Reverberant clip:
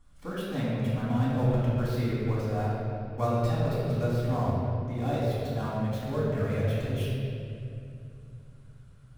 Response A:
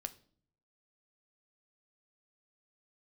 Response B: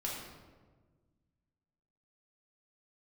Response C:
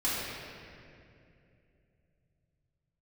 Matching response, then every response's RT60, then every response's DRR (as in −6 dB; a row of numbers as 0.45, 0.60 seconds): C; 0.55, 1.4, 2.6 seconds; 9.5, −4.5, −11.0 decibels